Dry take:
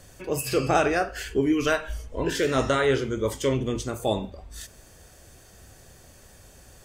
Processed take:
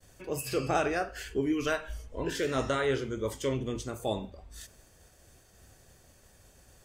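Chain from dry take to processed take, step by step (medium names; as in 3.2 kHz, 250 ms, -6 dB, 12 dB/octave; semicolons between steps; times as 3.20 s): expander -48 dBFS; trim -6.5 dB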